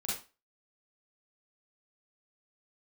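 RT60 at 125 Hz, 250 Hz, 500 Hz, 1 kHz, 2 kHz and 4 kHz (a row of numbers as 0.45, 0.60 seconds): 0.25, 0.30, 0.30, 0.30, 0.30, 0.30 seconds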